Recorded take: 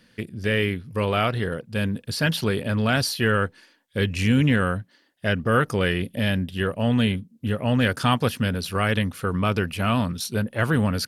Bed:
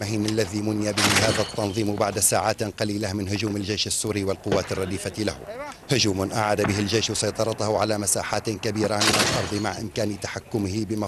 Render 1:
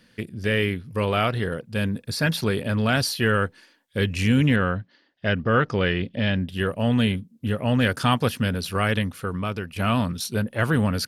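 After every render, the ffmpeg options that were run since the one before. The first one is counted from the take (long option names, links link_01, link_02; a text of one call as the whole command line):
ffmpeg -i in.wav -filter_complex "[0:a]asettb=1/sr,asplit=3[link_01][link_02][link_03];[link_01]atrim=end=1.894[link_04];[link_02]atrim=start=1.89:end=2.46,asetpts=PTS-STARTPTS,afade=type=in:duration=0.004:curve=qsin,afade=type=out:start_time=0.566:duration=0.004:curve=qsin,bandreject=frequency=3000:width=6[link_05];[link_03]atrim=start=2.456[link_06];[link_04][link_05]acrossfade=duration=0.004:curve1=hsin:curve2=qsin[link_07];[link_07][link_06]acrossfade=duration=0.004:curve1=qsin:curve2=hsin,asettb=1/sr,asplit=3[link_08][link_09][link_10];[link_08]atrim=end=4.564[link_11];[link_09]atrim=start=4.56:end=6.49,asetpts=PTS-STARTPTS,afade=type=in:duration=0.004:curve=qsin,afade=type=out:start_time=1.926:duration=0.004:curve=qsin,lowpass=frequency=5200:width=0.5412,lowpass=frequency=5200:width=1.3066[link_12];[link_10]atrim=start=6.486[link_13];[link_11][link_12]acrossfade=duration=0.004:curve1=hsin:curve2=qsin[link_14];[link_14][link_13]acrossfade=duration=0.004:curve1=qsin:curve2=hsin,asplit=2[link_15][link_16];[link_15]atrim=end=9.76,asetpts=PTS-STARTPTS,afade=type=out:start_time=8.86:duration=0.9:silence=0.334965[link_17];[link_16]atrim=start=9.76,asetpts=PTS-STARTPTS,afade=type=in:duration=0.004:curve=hsin:silence=0.334965[link_18];[link_17][link_18]concat=n=2:v=0:a=1" out.wav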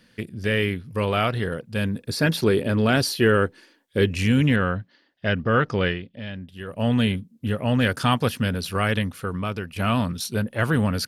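ffmpeg -i in.wav -filter_complex "[0:a]asettb=1/sr,asplit=3[link_01][link_02][link_03];[link_01]atrim=end=2.004[link_04];[link_02]atrim=start=2:end=4.15,asetpts=PTS-STARTPTS,afade=type=in:duration=0.004:curve=qsin,afade=type=out:start_time=2.146:duration=0.004:curve=qsin,equalizer=frequency=360:width=1.5:gain=8[link_05];[link_03]atrim=start=4.146[link_06];[link_04][link_05]acrossfade=duration=0.004:curve1=hsin:curve2=qsin[link_07];[link_07][link_06]acrossfade=duration=0.004:curve1=qsin:curve2=hsin,asplit=3[link_08][link_09][link_10];[link_08]atrim=end=6.02,asetpts=PTS-STARTPTS,afade=type=out:start_time=5.87:duration=0.15:silence=0.281838[link_11];[link_09]atrim=start=6.02:end=6.67,asetpts=PTS-STARTPTS,volume=-11dB[link_12];[link_10]atrim=start=6.67,asetpts=PTS-STARTPTS,afade=type=in:duration=0.15:silence=0.281838[link_13];[link_11][link_12][link_13]concat=n=3:v=0:a=1" out.wav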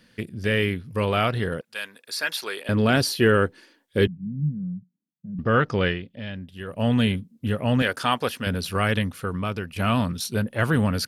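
ffmpeg -i in.wav -filter_complex "[0:a]asettb=1/sr,asplit=3[link_01][link_02][link_03];[link_01]atrim=end=1.614[link_04];[link_02]atrim=start=1.61:end=2.69,asetpts=PTS-STARTPTS,afade=type=in:duration=0.004:curve=qsin,afade=type=out:start_time=1.076:duration=0.004:curve=qsin,highpass=1000[link_05];[link_03]atrim=start=2.686[link_06];[link_04][link_05]acrossfade=duration=0.004:curve1=hsin:curve2=qsin[link_07];[link_07][link_06]acrossfade=duration=0.004:curve1=qsin:curve2=hsin,asettb=1/sr,asplit=3[link_08][link_09][link_10];[link_08]atrim=end=4.074[link_11];[link_09]atrim=start=4.07:end=5.39,asetpts=PTS-STARTPTS,afade=type=in:duration=0.004:curve=qsin,afade=type=out:start_time=1.316:duration=0.004:curve=qsin,asuperpass=centerf=170:order=4:qfactor=3.2[link_12];[link_10]atrim=start=5.386[link_13];[link_11][link_12]acrossfade=duration=0.004:curve1=hsin:curve2=qsin[link_14];[link_14][link_13]acrossfade=duration=0.004:curve1=qsin:curve2=hsin,asettb=1/sr,asplit=3[link_15][link_16][link_17];[link_15]atrim=end=7.824[link_18];[link_16]atrim=start=7.82:end=8.47,asetpts=PTS-STARTPTS,afade=type=in:duration=0.004:curve=qsin,afade=type=out:start_time=0.646:duration=0.004:curve=qsin,bass=frequency=250:gain=-13,treble=frequency=4000:gain=-2[link_19];[link_17]atrim=start=8.466[link_20];[link_18][link_19]acrossfade=duration=0.004:curve1=hsin:curve2=qsin[link_21];[link_21][link_20]acrossfade=duration=0.004:curve1=qsin:curve2=hsin" out.wav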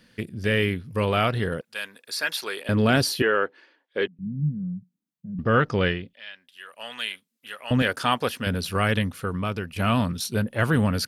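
ffmpeg -i in.wav -filter_complex "[0:a]asettb=1/sr,asplit=3[link_01][link_02][link_03];[link_01]atrim=end=3.224[link_04];[link_02]atrim=start=3.22:end=4.19,asetpts=PTS-STARTPTS,afade=type=in:duration=0.004:curve=qsin,afade=type=out:start_time=0.966:duration=0.004:curve=qsin,highpass=480,lowpass=3000[link_05];[link_03]atrim=start=4.186[link_06];[link_04][link_05]acrossfade=duration=0.004:curve1=hsin:curve2=qsin[link_07];[link_07][link_06]acrossfade=duration=0.004:curve1=qsin:curve2=hsin,asettb=1/sr,asplit=3[link_08][link_09][link_10];[link_08]atrim=end=6.134[link_11];[link_09]atrim=start=6.13:end=7.71,asetpts=PTS-STARTPTS,afade=type=in:duration=0.004:curve=qsin,afade=type=out:start_time=1.576:duration=0.004:curve=qsin,highpass=1300[link_12];[link_10]atrim=start=7.706[link_13];[link_11][link_12]acrossfade=duration=0.004:curve1=hsin:curve2=qsin[link_14];[link_14][link_13]acrossfade=duration=0.004:curve1=qsin:curve2=hsin" out.wav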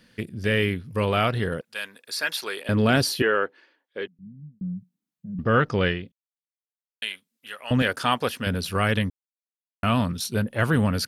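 ffmpeg -i in.wav -filter_complex "[0:a]asplit=6[link_01][link_02][link_03][link_04][link_05][link_06];[link_01]atrim=end=4.61,asetpts=PTS-STARTPTS,afade=type=out:start_time=3.32:duration=1.29[link_07];[link_02]atrim=start=4.61:end=6.12,asetpts=PTS-STARTPTS,afade=type=in:duration=0.004:curve=hsin,afade=type=out:start_time=1.506:duration=0.004:curve=hsin[link_08];[link_03]atrim=start=6.12:end=7.02,asetpts=PTS-STARTPTS,volume=0[link_09];[link_04]atrim=start=7.02:end=9.1,asetpts=PTS-STARTPTS,afade=type=in:duration=0.004:curve=hsin,afade=type=out:start_time=2.076:duration=0.004:curve=hsin[link_10];[link_05]atrim=start=9.1:end=9.83,asetpts=PTS-STARTPTS,volume=0[link_11];[link_06]atrim=start=9.83,asetpts=PTS-STARTPTS,afade=type=in:duration=0.004:curve=hsin[link_12];[link_07][link_08][link_09][link_10][link_11][link_12]concat=n=6:v=0:a=1" out.wav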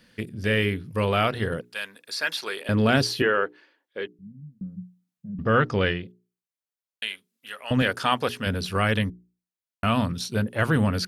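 ffmpeg -i in.wav -filter_complex "[0:a]acrossover=split=7400[link_01][link_02];[link_02]acompressor=threshold=-45dB:ratio=4:attack=1:release=60[link_03];[link_01][link_03]amix=inputs=2:normalize=0,bandreject=frequency=60:width_type=h:width=6,bandreject=frequency=120:width_type=h:width=6,bandreject=frequency=180:width_type=h:width=6,bandreject=frequency=240:width_type=h:width=6,bandreject=frequency=300:width_type=h:width=6,bandreject=frequency=360:width_type=h:width=6,bandreject=frequency=420:width_type=h:width=6" out.wav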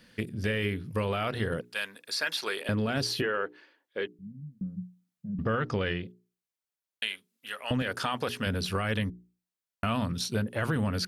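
ffmpeg -i in.wav -af "alimiter=limit=-15dB:level=0:latency=1:release=14,acompressor=threshold=-26dB:ratio=4" out.wav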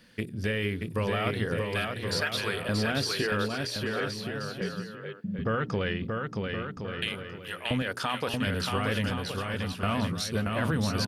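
ffmpeg -i in.wav -af "aecho=1:1:630|1071|1380|1596|1747:0.631|0.398|0.251|0.158|0.1" out.wav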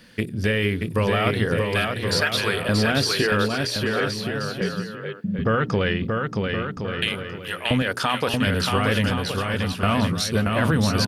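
ffmpeg -i in.wav -af "volume=7.5dB" out.wav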